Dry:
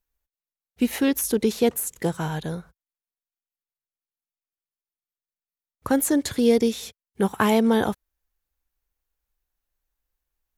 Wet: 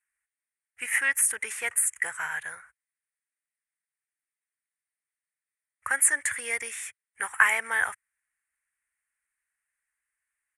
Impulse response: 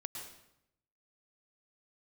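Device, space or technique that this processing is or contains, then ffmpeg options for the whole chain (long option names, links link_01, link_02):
filter by subtraction: -filter_complex "[0:a]asplit=2[link_01][link_02];[link_02]lowpass=1300,volume=-1[link_03];[link_01][link_03]amix=inputs=2:normalize=0,firequalizer=gain_entry='entry(110,0);entry(180,-26);entry(580,-13);entry(1900,12);entry(3900,-21);entry(9200,12);entry(14000,-21)':delay=0.05:min_phase=1"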